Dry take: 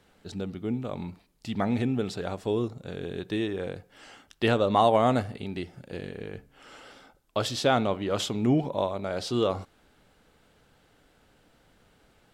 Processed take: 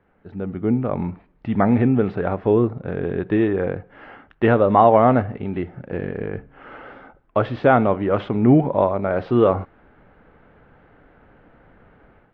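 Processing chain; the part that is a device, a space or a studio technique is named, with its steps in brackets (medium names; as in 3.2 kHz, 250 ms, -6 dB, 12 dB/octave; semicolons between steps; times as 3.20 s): action camera in a waterproof case (low-pass 2 kHz 24 dB/octave; level rider gain up to 11 dB; AAC 48 kbps 22.05 kHz)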